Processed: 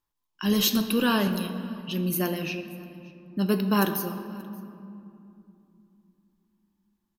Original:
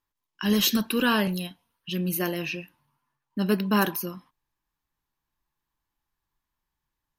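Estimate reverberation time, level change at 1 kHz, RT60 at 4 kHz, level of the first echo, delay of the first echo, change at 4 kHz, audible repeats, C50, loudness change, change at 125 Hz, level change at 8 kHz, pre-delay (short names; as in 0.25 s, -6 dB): 2.8 s, -0.5 dB, 1.5 s, -24.0 dB, 0.58 s, -1.0 dB, 1, 9.5 dB, -0.5 dB, +1.0 dB, 0.0 dB, 6 ms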